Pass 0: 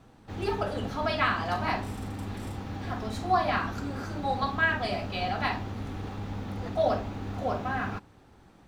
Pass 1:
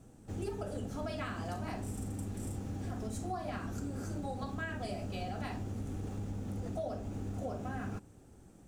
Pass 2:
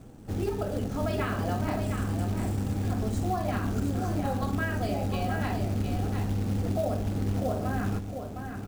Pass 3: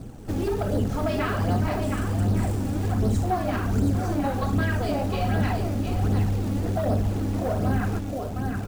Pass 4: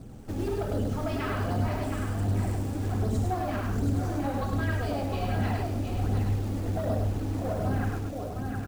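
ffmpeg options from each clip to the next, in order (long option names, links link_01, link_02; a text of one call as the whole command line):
ffmpeg -i in.wav -af "equalizer=frequency=1000:width_type=o:width=1:gain=-10,equalizer=frequency=2000:width_type=o:width=1:gain=-7,equalizer=frequency=4000:width_type=o:width=1:gain=-11,equalizer=frequency=8000:width_type=o:width=1:gain=10,acompressor=threshold=-35dB:ratio=6" out.wav
ffmpeg -i in.wav -af "aemphasis=mode=reproduction:type=50kf,aecho=1:1:710:0.473,acrusher=bits=5:mode=log:mix=0:aa=0.000001,volume=8.5dB" out.wav
ffmpeg -i in.wav -filter_complex "[0:a]asplit=2[link_01][link_02];[link_02]alimiter=level_in=3.5dB:limit=-24dB:level=0:latency=1,volume=-3.5dB,volume=-2.5dB[link_03];[link_01][link_03]amix=inputs=2:normalize=0,asoftclip=type=hard:threshold=-22dB,flanger=delay=0.2:depth=3.4:regen=43:speed=1.3:shape=sinusoidal,volume=6dB" out.wav
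ffmpeg -i in.wav -af "aecho=1:1:102:0.668,volume=-6dB" out.wav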